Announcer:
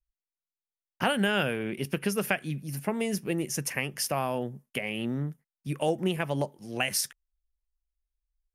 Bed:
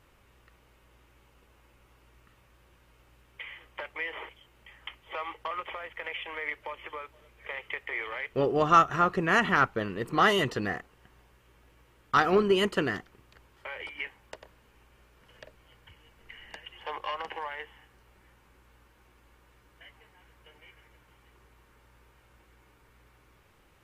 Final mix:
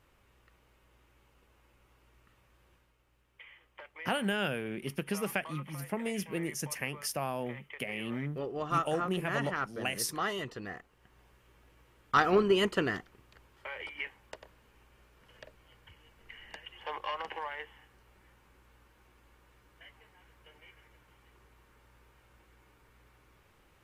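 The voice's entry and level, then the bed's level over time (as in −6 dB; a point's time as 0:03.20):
3.05 s, −5.5 dB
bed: 0:02.74 −4.5 dB
0:02.96 −11 dB
0:10.63 −11 dB
0:11.27 −2 dB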